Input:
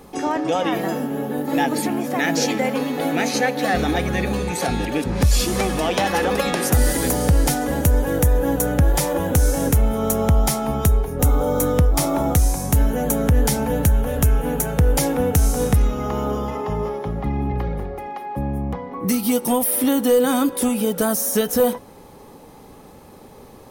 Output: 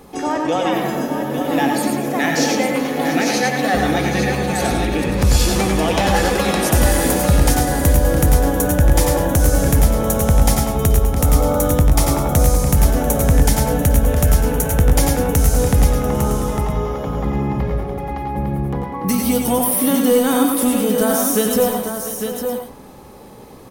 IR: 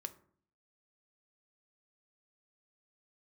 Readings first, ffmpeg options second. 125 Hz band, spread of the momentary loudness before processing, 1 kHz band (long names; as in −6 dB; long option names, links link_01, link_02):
+3.5 dB, 7 LU, +3.5 dB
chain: -filter_complex "[0:a]aecho=1:1:92|433|691|853:0.473|0.1|0.188|0.447,asplit=2[link_01][link_02];[1:a]atrim=start_sample=2205,adelay=107[link_03];[link_02][link_03]afir=irnorm=-1:irlink=0,volume=-3.5dB[link_04];[link_01][link_04]amix=inputs=2:normalize=0,volume=1dB"